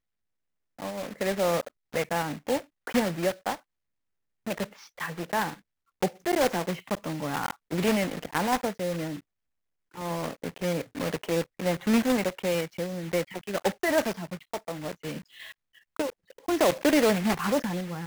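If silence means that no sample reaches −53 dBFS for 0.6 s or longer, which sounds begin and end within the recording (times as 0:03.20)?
0:00.79–0:03.60
0:04.47–0:09.21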